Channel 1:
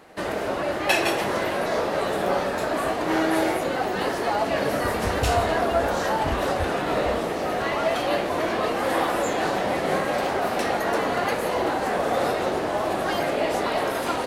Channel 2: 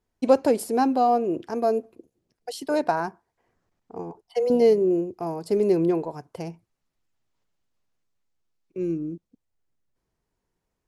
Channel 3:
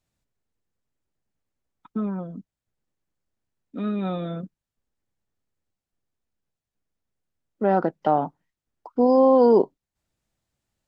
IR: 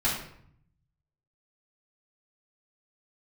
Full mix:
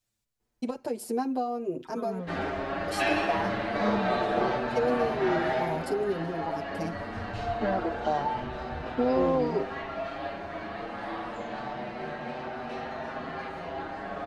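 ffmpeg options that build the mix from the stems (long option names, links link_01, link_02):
-filter_complex "[0:a]lowpass=4100,adelay=2100,volume=-6.5dB,afade=type=out:start_time=5.4:duration=0.58:silence=0.446684,asplit=2[link_01][link_02];[link_02]volume=-6dB[link_03];[1:a]acompressor=threshold=-26dB:ratio=12,adelay=400,volume=2dB[link_04];[2:a]acompressor=threshold=-19dB:ratio=6,highshelf=frequency=2500:gain=9.5,volume=-3dB,asplit=2[link_05][link_06];[link_06]apad=whole_len=721690[link_07];[link_01][link_07]sidechaingate=range=-33dB:threshold=-51dB:ratio=16:detection=peak[link_08];[3:a]atrim=start_sample=2205[link_09];[link_03][link_09]afir=irnorm=-1:irlink=0[link_10];[link_08][link_04][link_05][link_10]amix=inputs=4:normalize=0,asplit=2[link_11][link_12];[link_12]adelay=6.6,afreqshift=0.27[link_13];[link_11][link_13]amix=inputs=2:normalize=1"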